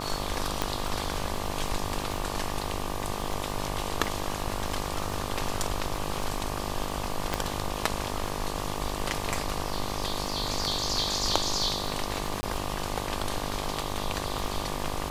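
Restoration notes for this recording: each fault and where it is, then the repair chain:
buzz 50 Hz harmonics 24 -35 dBFS
crackle 57/s -35 dBFS
0.62 pop -11 dBFS
7.34 pop
12.41–12.43 gap 20 ms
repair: de-click; de-hum 50 Hz, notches 24; interpolate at 12.41, 20 ms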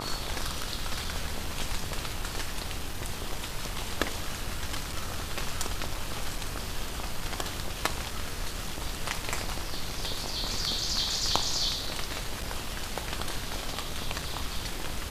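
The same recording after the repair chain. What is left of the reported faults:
0.62 pop
7.34 pop

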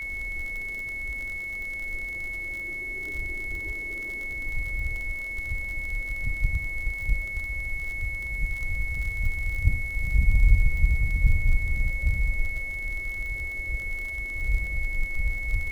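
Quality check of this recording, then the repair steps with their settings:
crackle 50/s -32 dBFS
tone 2200 Hz -31 dBFS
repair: de-click; notch 2200 Hz, Q 30

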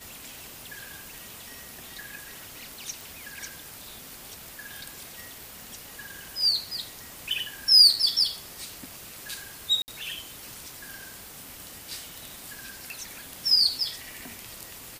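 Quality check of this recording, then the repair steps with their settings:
3.01 pop
9.82–9.88 gap 59 ms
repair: de-click; interpolate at 9.82, 59 ms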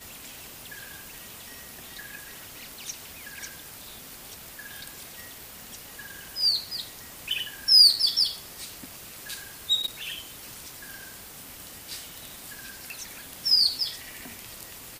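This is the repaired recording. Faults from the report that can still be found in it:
none

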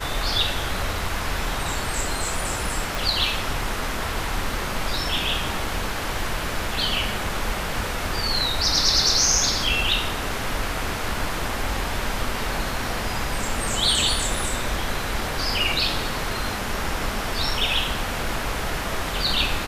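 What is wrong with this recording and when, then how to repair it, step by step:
2.95 pop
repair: de-click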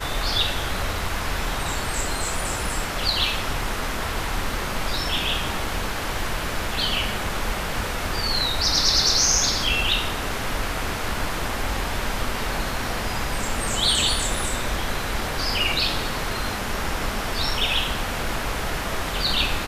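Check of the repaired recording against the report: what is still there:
none

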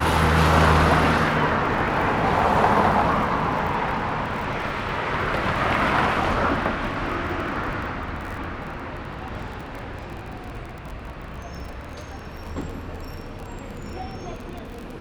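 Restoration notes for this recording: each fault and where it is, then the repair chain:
crackle 29/s -31 dBFS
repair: de-click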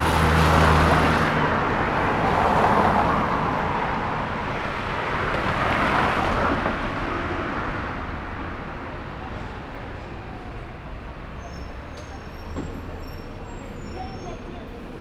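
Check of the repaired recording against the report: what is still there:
none

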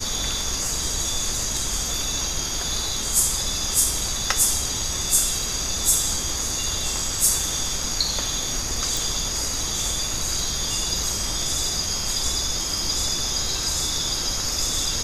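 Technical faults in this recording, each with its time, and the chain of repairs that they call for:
8.97 pop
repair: de-click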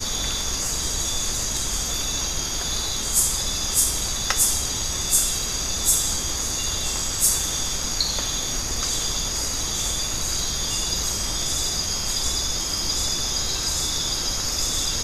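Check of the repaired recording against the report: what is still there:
8.97 pop

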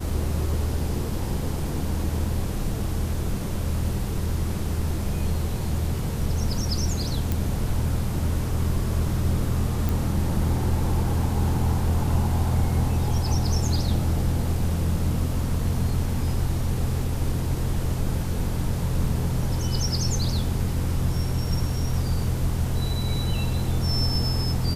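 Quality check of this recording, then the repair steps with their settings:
7.32 pop
9.89 pop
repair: de-click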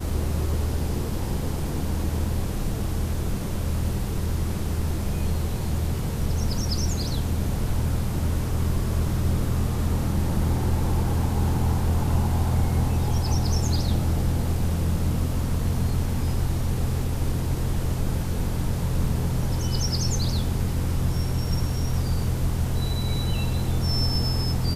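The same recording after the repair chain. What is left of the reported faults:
none

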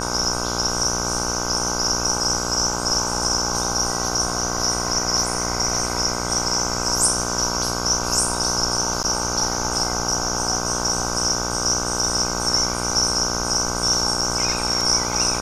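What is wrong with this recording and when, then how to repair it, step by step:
buzz 60 Hz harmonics 26 -27 dBFS
9.03–9.04 gap 9.6 ms
14.21 gap 4.7 ms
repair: de-hum 60 Hz, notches 26; interpolate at 9.03, 9.6 ms; interpolate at 14.21, 4.7 ms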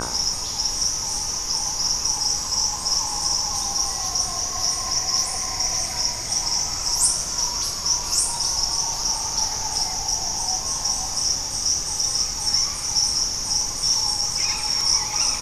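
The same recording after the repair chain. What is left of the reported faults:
none

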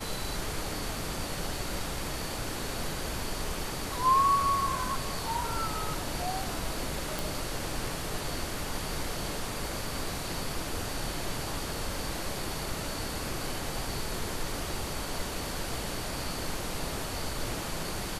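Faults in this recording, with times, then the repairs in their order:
7.19 pop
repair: de-click

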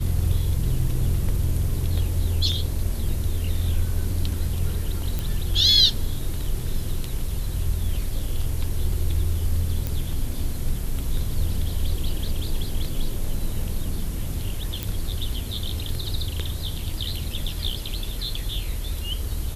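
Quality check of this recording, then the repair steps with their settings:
5.19 pop
9.87 pop
14.83 pop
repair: de-click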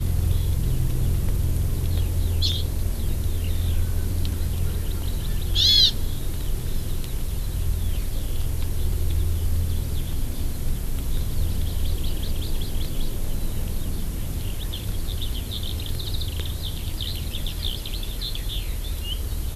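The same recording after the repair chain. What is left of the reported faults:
none

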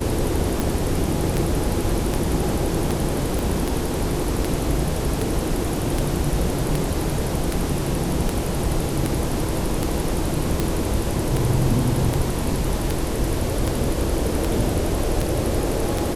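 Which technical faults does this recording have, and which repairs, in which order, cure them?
tick 78 rpm
3.39 pop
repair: de-click

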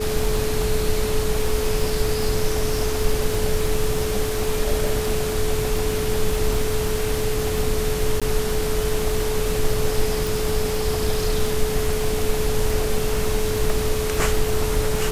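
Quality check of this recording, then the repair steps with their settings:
crackle 39/s -24 dBFS
tone 430 Hz -24 dBFS
8.2–8.22 gap 16 ms
10.27 pop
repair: de-click; notch 430 Hz, Q 30; interpolate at 8.2, 16 ms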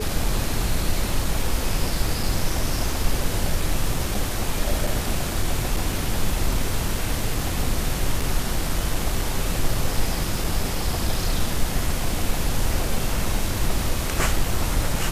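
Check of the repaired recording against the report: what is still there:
none

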